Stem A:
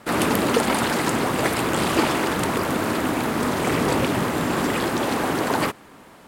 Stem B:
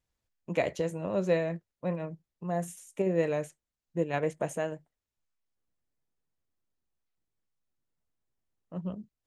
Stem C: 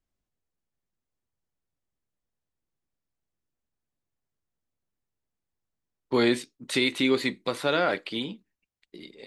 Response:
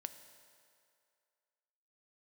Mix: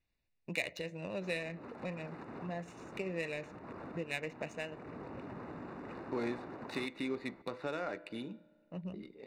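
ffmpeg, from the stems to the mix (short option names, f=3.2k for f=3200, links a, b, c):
-filter_complex "[0:a]acompressor=threshold=-27dB:ratio=6,alimiter=limit=-23.5dB:level=0:latency=1:release=264,adelay=1150,volume=-10dB[a];[1:a]aexciter=amount=9.3:drive=6.5:freq=2k,lowpass=4.4k,volume=-3dB,asplit=2[b][c];[c]volume=-16dB[d];[2:a]bandreject=f=168:t=h:w=4,bandreject=f=336:t=h:w=4,bandreject=f=504:t=h:w=4,bandreject=f=672:t=h:w=4,bandreject=f=840:t=h:w=4,bandreject=f=1.008k:t=h:w=4,bandreject=f=1.176k:t=h:w=4,bandreject=f=1.344k:t=h:w=4,bandreject=f=1.512k:t=h:w=4,bandreject=f=1.68k:t=h:w=4,bandreject=f=1.848k:t=h:w=4,bandreject=f=2.016k:t=h:w=4,bandreject=f=2.184k:t=h:w=4,bandreject=f=2.352k:t=h:w=4,bandreject=f=2.52k:t=h:w=4,bandreject=f=2.688k:t=h:w=4,bandreject=f=2.856k:t=h:w=4,bandreject=f=3.024k:t=h:w=4,bandreject=f=3.192k:t=h:w=4,bandreject=f=3.36k:t=h:w=4,bandreject=f=3.528k:t=h:w=4,bandreject=f=3.696k:t=h:w=4,bandreject=f=3.864k:t=h:w=4,bandreject=f=4.032k:t=h:w=4,bandreject=f=4.2k:t=h:w=4,bandreject=f=4.368k:t=h:w=4,bandreject=f=4.536k:t=h:w=4,bandreject=f=4.704k:t=h:w=4,bandreject=f=4.872k:t=h:w=4,bandreject=f=5.04k:t=h:w=4,bandreject=f=5.208k:t=h:w=4,bandreject=f=5.376k:t=h:w=4,bandreject=f=5.544k:t=h:w=4,bandreject=f=5.712k:t=h:w=4,bandreject=f=5.88k:t=h:w=4,bandreject=f=6.048k:t=h:w=4,acompressor=threshold=-37dB:ratio=2,volume=-7dB,asplit=2[e][f];[f]volume=-4dB[g];[a][b]amix=inputs=2:normalize=0,acompressor=threshold=-41dB:ratio=3,volume=0dB[h];[3:a]atrim=start_sample=2205[i];[d][g]amix=inputs=2:normalize=0[j];[j][i]afir=irnorm=-1:irlink=0[k];[e][h][k]amix=inputs=3:normalize=0,adynamicsmooth=sensitivity=5.5:basefreq=1.6k,asuperstop=centerf=3200:order=12:qfactor=6.3"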